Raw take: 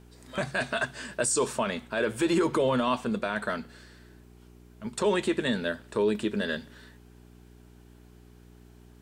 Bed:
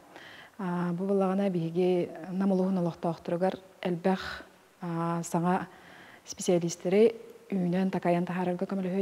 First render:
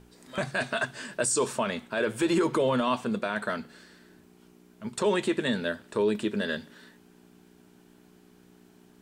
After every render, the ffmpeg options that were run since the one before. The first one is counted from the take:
-af "bandreject=f=60:t=h:w=4,bandreject=f=120:t=h:w=4"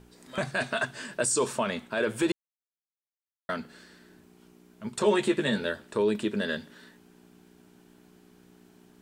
-filter_complex "[0:a]asettb=1/sr,asplit=3[s0][s1][s2];[s0]atrim=end=4.994[s3];[s1]atrim=start=4.99:end=5.84,asetpts=PTS-STARTPTS,afade=t=in:d=0.004:c=qsin,afade=t=out:st=0.846:d=0.004:c=qsin,asplit=2[s4][s5];[s5]adelay=14,volume=0.531[s6];[s4][s6]amix=inputs=2:normalize=0,atrim=end_sample=37485[s7];[s2]atrim=start=5.836[s8];[s3][s7]acrossfade=d=0.004:c1=hsin:c2=qsin[s9];[s9][s8]acrossfade=d=0.004:c1=qsin:c2=hsin,asplit=3[s10][s11][s12];[s10]atrim=end=2.32,asetpts=PTS-STARTPTS,afade=t=out:st=2.316:d=0.004:c=hsin[s13];[s11]atrim=start=2.32:end=3.49,asetpts=PTS-STARTPTS,volume=0[s14];[s12]atrim=start=3.49,asetpts=PTS-STARTPTS,afade=t=in:d=0.004:c=hsin[s15];[s13][s14][s15]concat=n=3:v=0:a=1"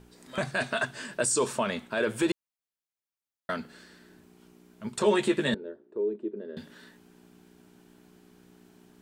-filter_complex "[0:a]asettb=1/sr,asplit=3[s0][s1][s2];[s0]atrim=end=5.544[s3];[s1]atrim=start=5.54:end=6.57,asetpts=PTS-STARTPTS,afade=t=in:d=0.004:c=qsin,afade=t=out:st=1.026:d=0.004:c=qsin,bandpass=f=370:t=q:w=4.2[s4];[s2]atrim=start=6.566[s5];[s3][s4]acrossfade=d=0.004:c1=hsin:c2=qsin[s6];[s6][s5]acrossfade=d=0.004:c1=qsin:c2=hsin"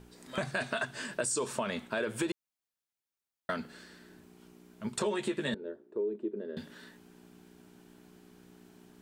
-af "acompressor=threshold=0.0355:ratio=6"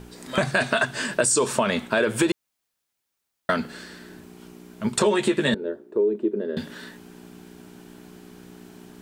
-af "volume=3.76"

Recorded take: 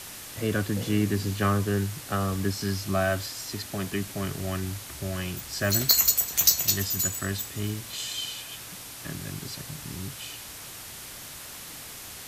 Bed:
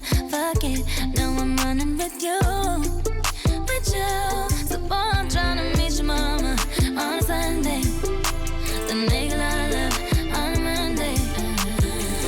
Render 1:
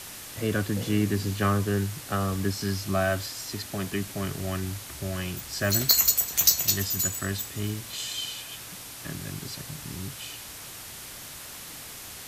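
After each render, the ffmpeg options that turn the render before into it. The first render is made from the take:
-af anull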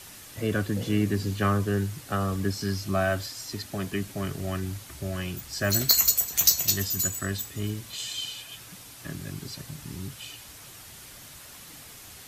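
-af "afftdn=nr=6:nf=-42"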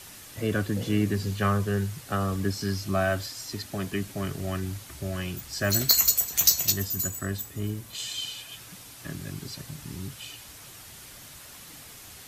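-filter_complex "[0:a]asettb=1/sr,asplit=3[s0][s1][s2];[s0]atrim=end=1.134[s3];[s1]atrim=start=1.13:end=2.07,asetpts=PTS-STARTPTS,afade=t=in:d=0.004:c=qsin,afade=t=out:st=0.936:d=0.004:c=qsin,equalizer=f=300:w=5.5:g=-9.5[s4];[s2]atrim=start=2.066[s5];[s3][s4]acrossfade=d=0.004:c1=hsin:c2=qsin[s6];[s6][s5]acrossfade=d=0.004:c1=qsin:c2=hsin,asettb=1/sr,asplit=3[s7][s8][s9];[s7]atrim=end=6.724[s10];[s8]atrim=start=6.72:end=7.95,asetpts=PTS-STARTPTS,afade=t=in:d=0.004:c=qsin,afade=t=out:st=1.226:d=0.004:c=qsin,equalizer=f=3900:t=o:w=2.4:g=-6[s11];[s9]atrim=start=7.946[s12];[s10][s11]acrossfade=d=0.004:c1=hsin:c2=qsin[s13];[s13][s12]acrossfade=d=0.004:c1=qsin:c2=hsin"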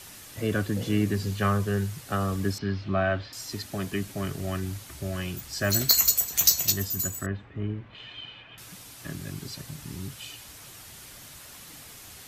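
-filter_complex "[0:a]asettb=1/sr,asplit=3[s0][s1][s2];[s0]atrim=end=2.584[s3];[s1]atrim=start=2.58:end=3.33,asetpts=PTS-STARTPTS,afade=t=in:d=0.004:c=qsin,afade=t=out:st=0.746:d=0.004:c=qsin,lowpass=f=3600:w=0.5412,lowpass=f=3600:w=1.3066[s4];[s2]atrim=start=3.326[s5];[s3][s4]acrossfade=d=0.004:c1=hsin:c2=qsin[s6];[s6][s5]acrossfade=d=0.004:c1=qsin:c2=hsin,asettb=1/sr,asplit=3[s7][s8][s9];[s7]atrim=end=7.264[s10];[s8]atrim=start=7.26:end=8.58,asetpts=PTS-STARTPTS,afade=t=in:d=0.004:c=qsin,afade=t=out:st=1.316:d=0.004:c=qsin,lowpass=f=2600:w=0.5412,lowpass=f=2600:w=1.3066[s11];[s9]atrim=start=8.576[s12];[s10][s11]acrossfade=d=0.004:c1=hsin:c2=qsin[s13];[s13][s12]acrossfade=d=0.004:c1=qsin:c2=hsin"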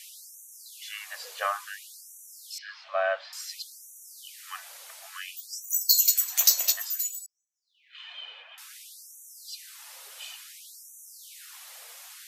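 -af "afftfilt=real='re*gte(b*sr/1024,430*pow(5800/430,0.5+0.5*sin(2*PI*0.57*pts/sr)))':imag='im*gte(b*sr/1024,430*pow(5800/430,0.5+0.5*sin(2*PI*0.57*pts/sr)))':win_size=1024:overlap=0.75"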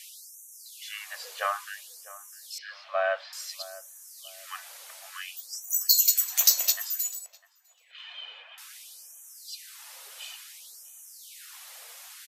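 -filter_complex "[0:a]asplit=2[s0][s1];[s1]adelay=652,lowpass=f=1300:p=1,volume=0.15,asplit=2[s2][s3];[s3]adelay=652,lowpass=f=1300:p=1,volume=0.35,asplit=2[s4][s5];[s5]adelay=652,lowpass=f=1300:p=1,volume=0.35[s6];[s0][s2][s4][s6]amix=inputs=4:normalize=0"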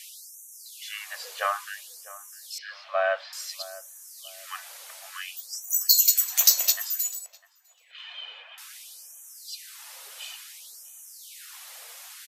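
-af "volume=1.26"

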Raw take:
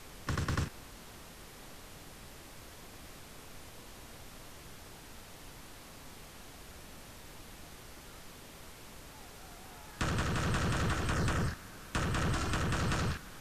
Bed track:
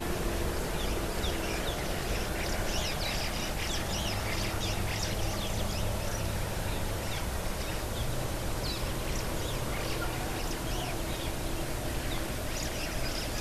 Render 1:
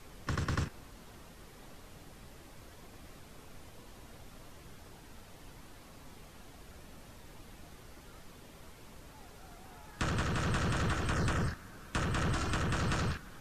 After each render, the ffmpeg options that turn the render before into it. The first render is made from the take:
-af "afftdn=nr=6:nf=-52"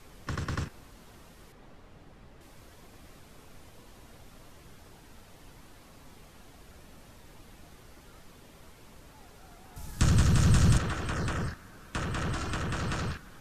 -filter_complex "[0:a]asettb=1/sr,asplit=3[s0][s1][s2];[s0]atrim=end=1.524[s3];[s1]atrim=start=1.52:end=2.41,asetpts=PTS-STARTPTS,afade=t=in:d=0.004:c=qsin,afade=t=out:st=0.886:d=0.004:c=qsin,lowpass=f=2200:p=1[s4];[s2]atrim=start=2.406[s5];[s3][s4]acrossfade=d=0.004:c1=hsin:c2=qsin[s6];[s6][s5]acrossfade=d=0.004:c1=qsin:c2=hsin,asettb=1/sr,asplit=3[s7][s8][s9];[s7]atrim=end=9.764[s10];[s8]atrim=start=9.76:end=10.78,asetpts=PTS-STARTPTS,afade=t=in:d=0.004:c=qsin,afade=t=out:st=1.016:d=0.004:c=qsin,bass=f=250:g=13,treble=f=4000:g=12[s11];[s9]atrim=start=10.776[s12];[s10][s11]acrossfade=d=0.004:c1=hsin:c2=qsin[s13];[s13][s12]acrossfade=d=0.004:c1=qsin:c2=hsin"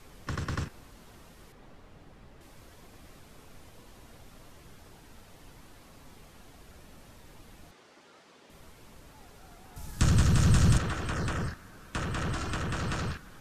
-filter_complex "[0:a]asettb=1/sr,asplit=3[s0][s1][s2];[s0]atrim=end=7.714[s3];[s1]atrim=start=7.71:end=8.5,asetpts=PTS-STARTPTS,afade=t=in:d=0.004:c=qsin,afade=t=out:st=0.786:d=0.004:c=qsin,highpass=290,lowpass=6400[s4];[s2]atrim=start=8.496[s5];[s3][s4]acrossfade=d=0.004:c1=hsin:c2=qsin[s6];[s6][s5]acrossfade=d=0.004:c1=qsin:c2=hsin"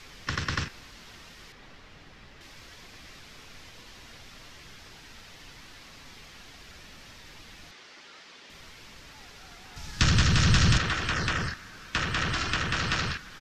-filter_complex "[0:a]acrossover=split=7300[s0][s1];[s1]acompressor=threshold=0.00112:ratio=4:attack=1:release=60[s2];[s0][s2]amix=inputs=2:normalize=0,firequalizer=gain_entry='entry(610,0);entry(1900,11);entry(5300,12);entry(9000,-1)':delay=0.05:min_phase=1"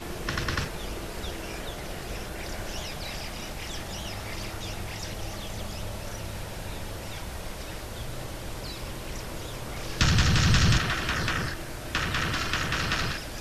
-filter_complex "[1:a]volume=0.668[s0];[0:a][s0]amix=inputs=2:normalize=0"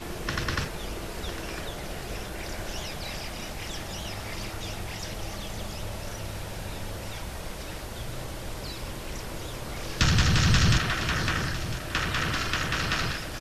-af "aecho=1:1:1003:0.224"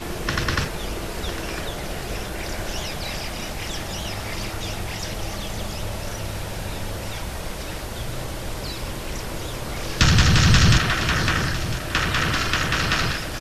-af "volume=2"

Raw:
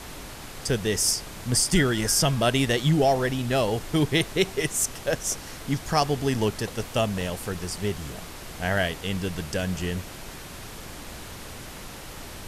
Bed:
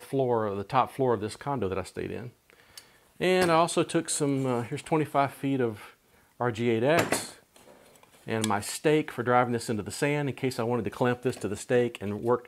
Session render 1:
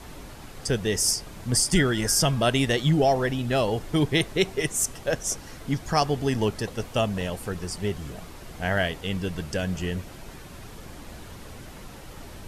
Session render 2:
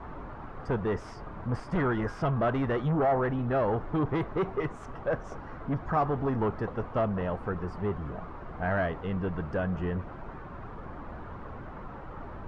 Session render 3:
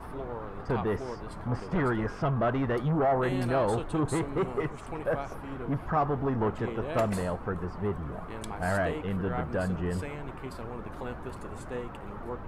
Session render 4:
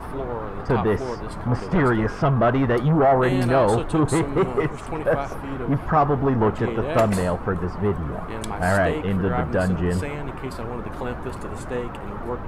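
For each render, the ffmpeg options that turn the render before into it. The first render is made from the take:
-af "afftdn=nr=7:nf=-40"
-af "asoftclip=type=tanh:threshold=0.0631,lowpass=f=1200:t=q:w=2.1"
-filter_complex "[1:a]volume=0.224[s0];[0:a][s0]amix=inputs=2:normalize=0"
-af "volume=2.66"

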